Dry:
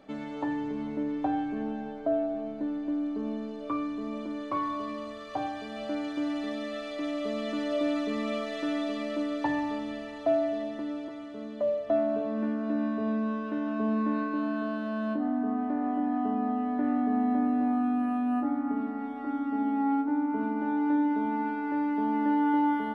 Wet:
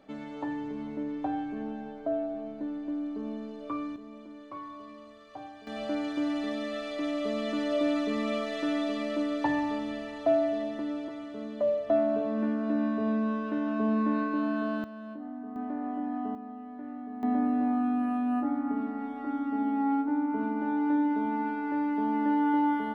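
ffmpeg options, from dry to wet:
-af "asetnsamples=n=441:p=0,asendcmd='3.96 volume volume -11dB;5.67 volume volume 1dB;14.84 volume volume -11dB;15.56 volume volume -4.5dB;16.35 volume volume -13dB;17.23 volume volume -0.5dB',volume=-3dB"

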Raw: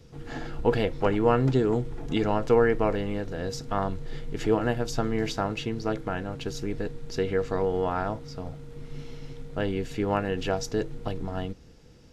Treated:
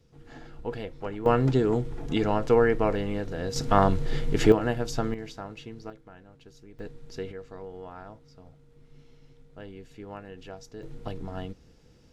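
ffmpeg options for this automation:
-af "asetnsamples=n=441:p=0,asendcmd='1.26 volume volume 0dB;3.56 volume volume 7.5dB;4.52 volume volume -1dB;5.14 volume volume -11dB;5.9 volume volume -19dB;6.79 volume volume -8dB;7.32 volume volume -15dB;10.83 volume volume -4dB',volume=-10.5dB"

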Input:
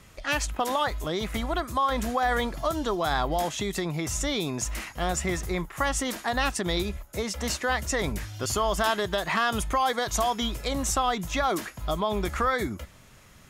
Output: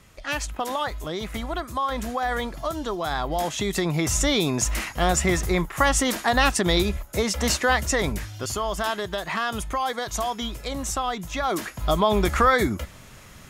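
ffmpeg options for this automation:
-af "volume=15dB,afade=t=in:st=3.22:d=0.79:silence=0.421697,afade=t=out:st=7.58:d=0.98:silence=0.398107,afade=t=in:st=11.38:d=0.59:silence=0.375837"

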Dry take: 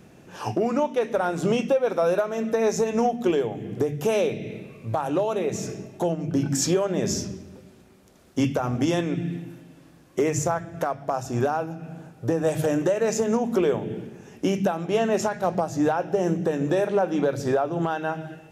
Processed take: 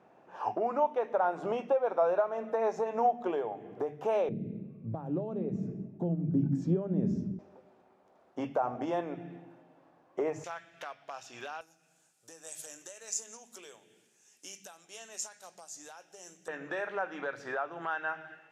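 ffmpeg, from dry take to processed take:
-af "asetnsamples=n=441:p=0,asendcmd='4.29 bandpass f 190;7.39 bandpass f 790;10.44 bandpass f 3000;11.61 bandpass f 7900;16.48 bandpass f 1600',bandpass=f=850:t=q:w=1.9:csg=0"

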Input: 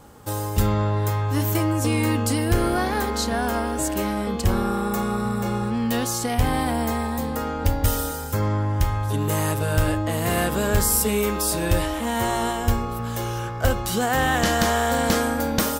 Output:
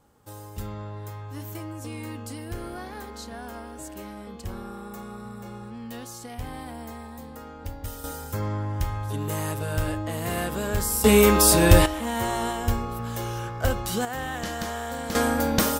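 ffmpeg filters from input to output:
-af "asetnsamples=n=441:p=0,asendcmd='8.04 volume volume -6dB;11.04 volume volume 6.5dB;11.86 volume volume -3.5dB;14.05 volume volume -11dB;15.15 volume volume 0dB',volume=-14.5dB"

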